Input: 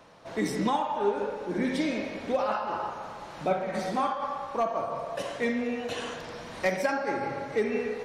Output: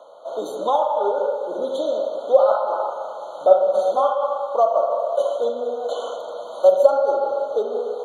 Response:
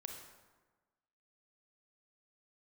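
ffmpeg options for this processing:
-af "highpass=f=570:t=q:w=4.9,afftfilt=real='re*eq(mod(floor(b*sr/1024/1500),2),0)':imag='im*eq(mod(floor(b*sr/1024/1500),2),0)':win_size=1024:overlap=0.75,volume=2.5dB"

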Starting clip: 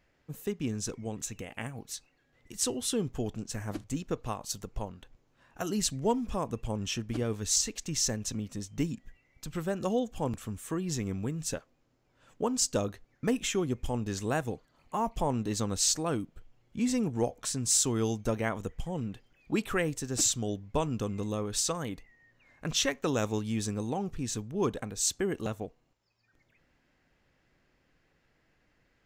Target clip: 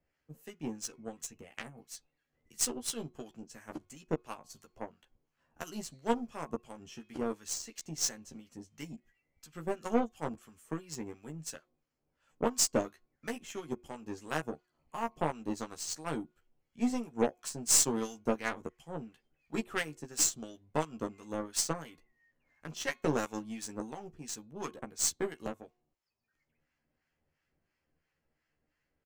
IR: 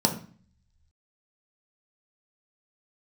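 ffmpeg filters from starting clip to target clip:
-filter_complex "[0:a]bandreject=f=3.7k:w=9.1,bandreject=f=361.4:t=h:w=4,bandreject=f=722.8:t=h:w=4,bandreject=f=1.0842k:t=h:w=4,bandreject=f=1.4456k:t=h:w=4,bandreject=f=1.807k:t=h:w=4,bandreject=f=2.1684k:t=h:w=4,bandreject=f=2.5298k:t=h:w=4,bandreject=f=2.8912k:t=h:w=4,bandreject=f=3.2526k:t=h:w=4,bandreject=f=3.614k:t=h:w=4,bandreject=f=3.9754k:t=h:w=4,bandreject=f=4.3368k:t=h:w=4,acrossover=split=150|1800[a][b][c];[a]acompressor=threshold=-53dB:ratio=6[d];[d][b][c]amix=inputs=3:normalize=0,acrossover=split=940[e][f];[e]aeval=exprs='val(0)*(1-0.7/2+0.7/2*cos(2*PI*2.9*n/s))':c=same[g];[f]aeval=exprs='val(0)*(1-0.7/2-0.7/2*cos(2*PI*2.9*n/s))':c=same[h];[g][h]amix=inputs=2:normalize=0,aeval=exprs='0.158*(cos(1*acos(clip(val(0)/0.158,-1,1)))-cos(1*PI/2))+0.0282*(cos(2*acos(clip(val(0)/0.158,-1,1)))-cos(2*PI/2))+0.01*(cos(5*acos(clip(val(0)/0.158,-1,1)))-cos(5*PI/2))+0.0224*(cos(7*acos(clip(val(0)/0.158,-1,1)))-cos(7*PI/2))':c=same,asplit=2[i][j];[j]adelay=13,volume=-4dB[k];[i][k]amix=inputs=2:normalize=0"

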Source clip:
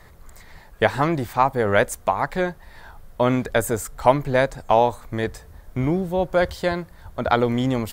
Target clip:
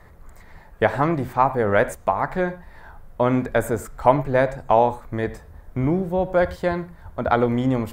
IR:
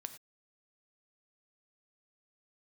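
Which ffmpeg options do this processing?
-filter_complex "[0:a]asplit=2[a][b];[1:a]atrim=start_sample=2205,lowpass=2.4k[c];[b][c]afir=irnorm=-1:irlink=0,volume=6.5dB[d];[a][d]amix=inputs=2:normalize=0,volume=-7dB"

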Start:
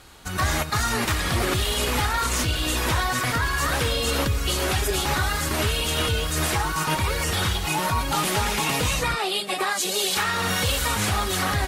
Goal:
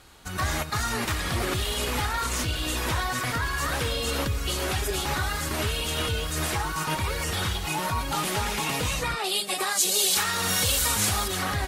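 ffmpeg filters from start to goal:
-filter_complex "[0:a]asettb=1/sr,asplit=3[a][b][c];[a]atrim=end=9.244[d];[b]atrim=start=9.24:end=11.28,asetpts=PTS-STARTPTS,afade=t=in:d=0.004:c=qsin,afade=t=out:st=2.036:d=0.004:c=qsin,bass=f=250:g=0,treble=f=4k:g=9[e];[c]atrim=start=11.276[f];[d][e]acrossfade=d=0.004:c1=hsin:c2=qsin[g];[g][f]acrossfade=d=0.004:c1=qsin:c2=hsin,volume=-4dB"

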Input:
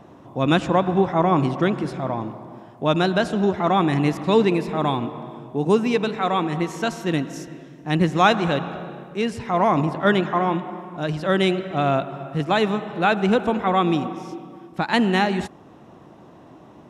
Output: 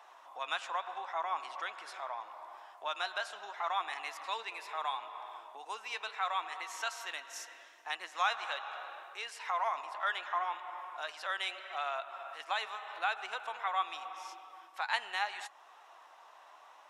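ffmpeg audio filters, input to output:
-af "flanger=delay=2.2:depth=3.1:regen=76:speed=0.76:shape=triangular,acompressor=threshold=-36dB:ratio=2,highpass=f=850:w=0.5412,highpass=f=850:w=1.3066,volume=3dB"

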